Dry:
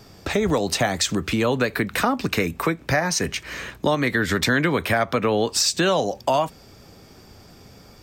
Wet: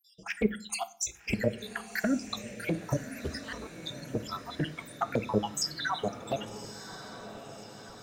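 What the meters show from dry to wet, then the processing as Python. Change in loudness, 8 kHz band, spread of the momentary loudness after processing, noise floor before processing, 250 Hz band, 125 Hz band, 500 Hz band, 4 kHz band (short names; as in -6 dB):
-12.0 dB, -10.5 dB, 13 LU, -48 dBFS, -9.5 dB, -10.0 dB, -12.5 dB, -12.0 dB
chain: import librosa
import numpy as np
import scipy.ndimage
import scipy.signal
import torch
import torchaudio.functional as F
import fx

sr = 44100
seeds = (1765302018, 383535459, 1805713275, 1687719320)

y = fx.spec_dropout(x, sr, seeds[0], share_pct=85)
y = fx.env_flanger(y, sr, rest_ms=6.7, full_db=-17.5)
y = fx.echo_diffused(y, sr, ms=1157, feedback_pct=57, wet_db=-12.0)
y = fx.rev_fdn(y, sr, rt60_s=0.46, lf_ratio=1.4, hf_ratio=0.8, size_ms=29.0, drr_db=12.0)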